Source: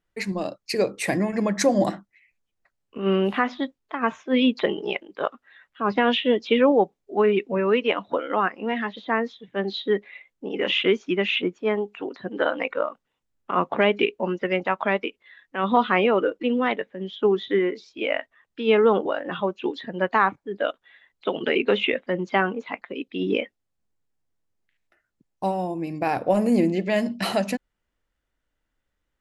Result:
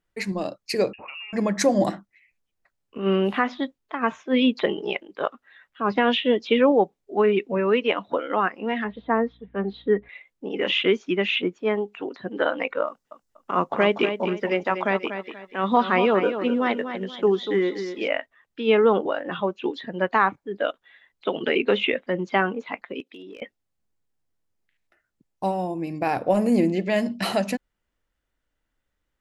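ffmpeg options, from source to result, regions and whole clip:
ffmpeg -i in.wav -filter_complex "[0:a]asettb=1/sr,asplit=3[link_01][link_02][link_03];[link_01]atrim=end=0.934[link_04];[link_02]atrim=start=0.93:end=1.33,asetpts=PTS-STARTPTS,afade=type=in:duration=0.004:curve=qsin,afade=type=out:start_time=0.396:duration=0.004:curve=qsin,acompressor=threshold=-34dB:ratio=16:attack=3.2:release=140:knee=1:detection=peak,acrusher=bits=8:mode=log:mix=0:aa=0.000001,lowpass=frequency=2600:width_type=q:width=0.5098,lowpass=frequency=2600:width_type=q:width=0.6013,lowpass=frequency=2600:width_type=q:width=0.9,lowpass=frequency=2600:width_type=q:width=2.563,afreqshift=-3000[link_05];[link_03]atrim=start=1.326[link_06];[link_04][link_05]acrossfade=duration=0.004:curve1=hsin:curve2=qsin[link_07];[link_07][link_06]acrossfade=duration=0.004:curve1=qsin:curve2=hsin,asettb=1/sr,asplit=3[link_08][link_09][link_10];[link_08]atrim=end=8.844[link_11];[link_09]atrim=start=8.84:end=10.09,asetpts=PTS-STARTPTS,afade=type=in:duration=0.004:curve=qsin,afade=type=out:start_time=1.246:duration=0.004:curve=qsin,lowpass=1600,aecho=1:1:4.3:0.47,atrim=end_sample=55125,aeval=exprs='val(0)+0.00158*(sin(2*PI*60*n/s)+sin(2*PI*2*60*n/s)/2+sin(2*PI*3*60*n/s)/3+sin(2*PI*4*60*n/s)/4+sin(2*PI*5*60*n/s)/5)':channel_layout=same[link_12];[link_10]atrim=start=10.086[link_13];[link_11][link_12]acrossfade=duration=0.004:curve1=hsin:curve2=qsin[link_14];[link_14][link_13]acrossfade=duration=0.004:curve1=qsin:curve2=hsin,asettb=1/sr,asplit=3[link_15][link_16][link_17];[link_15]atrim=end=12.874[link_18];[link_16]atrim=start=12.87:end=18.08,asetpts=PTS-STARTPTS,afade=type=in:duration=0.004:curve=qsin,afade=type=out:start_time=5.206:duration=0.004:curve=qsin,highshelf=frequency=4100:width_type=q:width=1.5:gain=6,aecho=1:1:241|482|723|964:0.355|0.11|0.0341|0.0106,atrim=end_sample=229761[link_19];[link_17]atrim=start=18.076[link_20];[link_18][link_19]acrossfade=duration=0.004:curve1=hsin:curve2=qsin[link_21];[link_21][link_20]acrossfade=duration=0.004:curve1=qsin:curve2=hsin,asettb=1/sr,asplit=3[link_22][link_23][link_24];[link_22]atrim=end=23.004[link_25];[link_23]atrim=start=23:end=23.42,asetpts=PTS-STARTPTS,afade=type=in:duration=0.004:curve=qsin,afade=type=out:start_time=0.416:duration=0.004:curve=qsin,highpass=320,acompressor=threshold=-40dB:ratio=5:attack=3.2:release=140:knee=1:detection=peak,asoftclip=type=hard:threshold=-34dB[link_26];[link_24]atrim=start=23.416[link_27];[link_25][link_26]acrossfade=duration=0.004:curve1=hsin:curve2=qsin[link_28];[link_28][link_27]acrossfade=duration=0.004:curve1=qsin:curve2=hsin" out.wav

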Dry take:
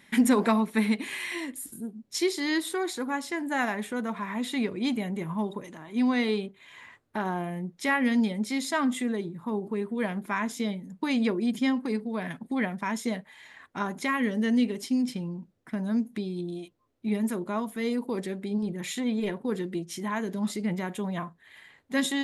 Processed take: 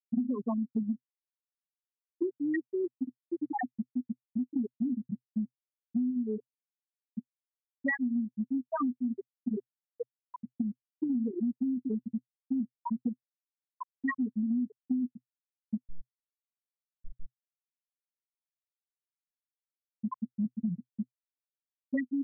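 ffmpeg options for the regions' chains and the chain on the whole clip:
ffmpeg -i in.wav -filter_complex "[0:a]asettb=1/sr,asplit=3[link_01][link_02][link_03];[link_01]atrim=end=9.714[link_04];[link_02]atrim=start=9.71:end=10.5,asetpts=PTS-STARTPTS,afade=type=in:duration=0.004:curve=qsin,afade=type=out:start_time=0.786:duration=0.004:curve=qsin,lowshelf=frequency=320:gain=-4.5,bandreject=frequency=50:width_type=h:width=6,bandreject=frequency=100:width_type=h:width=6,bandreject=frequency=150:width_type=h:width=6,bandreject=frequency=200:width_type=h:width=6,bandreject=frequency=250:width_type=h:width=6,bandreject=frequency=300:width_type=h:width=6,aeval=exprs='sgn(val(0))*max(abs(val(0))-0.00112,0)':channel_layout=same[link_05];[link_03]atrim=start=10.496[link_06];[link_04][link_05]acrossfade=duration=0.004:curve1=hsin:curve2=qsin[link_07];[link_07][link_06]acrossfade=duration=0.004:curve1=qsin:curve2=hsin,asettb=1/sr,asplit=3[link_08][link_09][link_10];[link_08]atrim=end=15.774[link_11];[link_09]atrim=start=15.77:end=19.84,asetpts=PTS-STARTPTS,afade=type=in:duration=0.004:curve=qsin,afade=type=out:start_time=4.066:duration=0.004:curve=qsin,acompressor=threshold=-33dB:ratio=6:attack=3.2:release=140:knee=1:detection=peak,aeval=exprs='abs(val(0))':channel_layout=same[link_12];[link_10]atrim=start=19.836[link_13];[link_11][link_12]acrossfade=duration=0.004:curve1=hsin:curve2=qsin[link_14];[link_14][link_13]acrossfade=duration=0.004:curve1=qsin:curve2=hsin,afftfilt=real='re*gte(hypot(re,im),0.355)':imag='im*gte(hypot(re,im),0.355)':win_size=1024:overlap=0.75,equalizer=frequency=125:width_type=o:width=0.33:gain=8,equalizer=frequency=250:width_type=o:width=0.33:gain=5,equalizer=frequency=2000:width_type=o:width=0.33:gain=11,acompressor=threshold=-33dB:ratio=12,volume=5dB" out.wav

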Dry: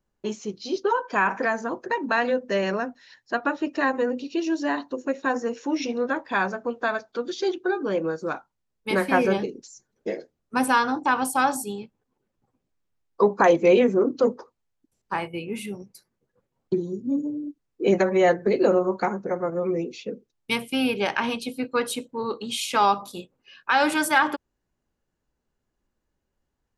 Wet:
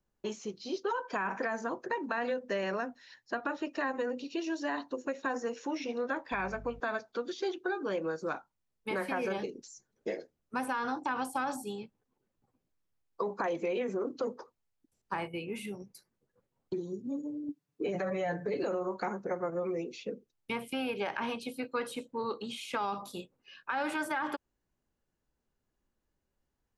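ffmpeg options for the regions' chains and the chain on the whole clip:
ffmpeg -i in.wav -filter_complex "[0:a]asettb=1/sr,asplit=3[link_01][link_02][link_03];[link_01]atrim=end=6.324[link_04];[link_02]atrim=start=6.32:end=6.8,asetpts=PTS-STARTPTS,afade=type=in:duration=0.004:curve=qsin,afade=type=out:start_time=0.476:duration=0.004:curve=qsin,equalizer=frequency=2300:width=5.3:gain=13.5,aeval=exprs='val(0)+0.01*(sin(2*PI*50*n/s)+sin(2*PI*2*50*n/s)/2+sin(2*PI*3*50*n/s)/3+sin(2*PI*4*50*n/s)/4+sin(2*PI*5*50*n/s)/5)':channel_layout=same[link_05];[link_03]atrim=start=6.796[link_06];[link_04][link_05]acrossfade=duration=0.004:curve1=hsin:curve2=qsin[link_07];[link_07][link_06]acrossfade=duration=0.004:curve1=qsin:curve2=hsin,asettb=1/sr,asplit=3[link_08][link_09][link_10];[link_08]atrim=end=17.484[link_11];[link_09]atrim=start=17.48:end=18.64,asetpts=PTS-STARTPTS,afade=type=in:duration=0.004:curve=qsin,afade=type=out:start_time=1.156:duration=0.004:curve=qsin,highpass=88,equalizer=frequency=160:width_type=o:width=1.6:gain=9,aecho=1:1:6.9:0.78,atrim=end_sample=51156[link_12];[link_10]atrim=start=18.636[link_13];[link_11][link_12]acrossfade=duration=0.004:curve1=hsin:curve2=qsin[link_14];[link_14][link_13]acrossfade=duration=0.004:curve1=qsin:curve2=hsin,acrossover=split=2500[link_15][link_16];[link_16]acompressor=threshold=-40dB:ratio=4:attack=1:release=60[link_17];[link_15][link_17]amix=inputs=2:normalize=0,alimiter=limit=-16.5dB:level=0:latency=1:release=37,acrossover=split=450|1700[link_18][link_19][link_20];[link_18]acompressor=threshold=-35dB:ratio=4[link_21];[link_19]acompressor=threshold=-29dB:ratio=4[link_22];[link_20]acompressor=threshold=-36dB:ratio=4[link_23];[link_21][link_22][link_23]amix=inputs=3:normalize=0,volume=-4dB" out.wav

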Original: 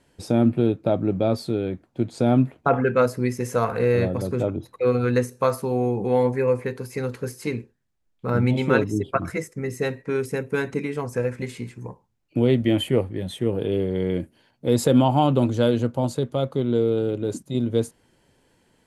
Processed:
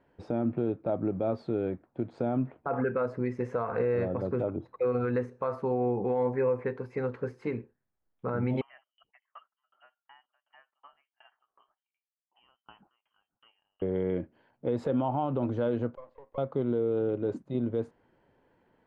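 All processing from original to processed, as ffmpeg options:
ffmpeg -i in.wav -filter_complex "[0:a]asettb=1/sr,asplit=3[link_01][link_02][link_03];[link_01]atrim=end=8.614[link_04];[link_02]atrim=start=8.61:end=13.82,asetpts=PTS-STARTPTS,afade=type=in:duration=0.004:curve=qsin,afade=type=out:start_time=5.206:duration=0.004:curve=qsin,aderivative,lowpass=frequency=2800:width_type=q:width=0.5098,lowpass=frequency=2800:width_type=q:width=0.6013,lowpass=frequency=2800:width_type=q:width=0.9,lowpass=frequency=2800:width_type=q:width=2.563,afreqshift=-3300,aeval=exprs='val(0)*pow(10,-33*if(lt(mod(2.7*n/s,1),2*abs(2.7)/1000),1-mod(2.7*n/s,1)/(2*abs(2.7)/1000),(mod(2.7*n/s,1)-2*abs(2.7)/1000)/(1-2*abs(2.7)/1000))/20)':channel_layout=same[link_05];[link_03]atrim=start=13.816[link_06];[link_04][link_05]acrossfade=duration=0.004:curve1=hsin:curve2=qsin[link_07];[link_07][link_06]acrossfade=duration=0.004:curve1=qsin:curve2=hsin,asettb=1/sr,asplit=3[link_08][link_09][link_10];[link_08]atrim=end=15.954[link_11];[link_09]atrim=start=15.95:end=16.38,asetpts=PTS-STARTPTS,afade=type=in:duration=0.004:curve=qsin,afade=type=out:start_time=0.426:duration=0.004:curve=qsin,acompressor=threshold=-27dB:ratio=4:attack=3.2:release=140:knee=1:detection=peak,asplit=3[link_12][link_13][link_14];[link_12]bandpass=frequency=530:width_type=q:width=8,volume=0dB[link_15];[link_13]bandpass=frequency=1840:width_type=q:width=8,volume=-6dB[link_16];[link_14]bandpass=frequency=2480:width_type=q:width=8,volume=-9dB[link_17];[link_15][link_16][link_17]amix=inputs=3:normalize=0,aeval=exprs='max(val(0),0)':channel_layout=same[link_18];[link_10]atrim=start=16.376[link_19];[link_11][link_18]acrossfade=duration=0.004:curve1=hsin:curve2=qsin[link_20];[link_20][link_19]acrossfade=duration=0.004:curve1=qsin:curve2=hsin,lowpass=1400,lowshelf=frequency=320:gain=-8.5,alimiter=limit=-20dB:level=0:latency=1:release=94" out.wav

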